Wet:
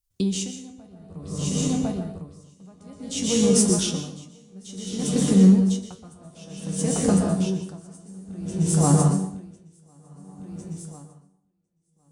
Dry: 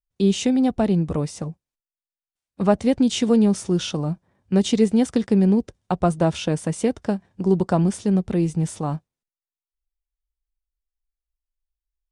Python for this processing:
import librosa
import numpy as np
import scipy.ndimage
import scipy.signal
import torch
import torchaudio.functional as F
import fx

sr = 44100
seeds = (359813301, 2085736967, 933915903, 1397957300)

p1 = fx.bass_treble(x, sr, bass_db=7, treble_db=12)
p2 = fx.over_compress(p1, sr, threshold_db=-19.0, ratio=-0.5)
p3 = p1 + (p2 * librosa.db_to_amplitude(1.5))
p4 = fx.transient(p3, sr, attack_db=-1, sustain_db=-8)
p5 = fx.comb_fb(p4, sr, f0_hz=94.0, decay_s=0.28, harmonics='all', damping=0.0, mix_pct=80)
p6 = fx.cheby_harmonics(p5, sr, harmonics=(5, 8), levels_db=(-37, -41), full_scale_db=-5.0)
p7 = fx.echo_feedback(p6, sr, ms=1053, feedback_pct=28, wet_db=-7.5)
p8 = fx.rev_plate(p7, sr, seeds[0], rt60_s=1.3, hf_ratio=0.55, predelay_ms=110, drr_db=0.0)
y = p8 * 10.0 ** (-29 * (0.5 - 0.5 * np.cos(2.0 * np.pi * 0.56 * np.arange(len(p8)) / sr)) / 20.0)